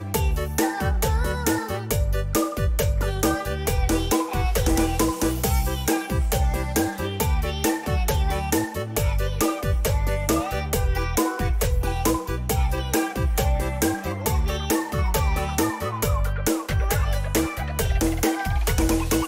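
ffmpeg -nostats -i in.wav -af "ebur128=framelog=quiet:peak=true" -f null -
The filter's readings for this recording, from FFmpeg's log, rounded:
Integrated loudness:
  I:         -24.0 LUFS
  Threshold: -34.0 LUFS
Loudness range:
  LRA:         1.1 LU
  Threshold: -44.0 LUFS
  LRA low:   -24.4 LUFS
  LRA high:  -23.2 LUFS
True peak:
  Peak:      -10.9 dBFS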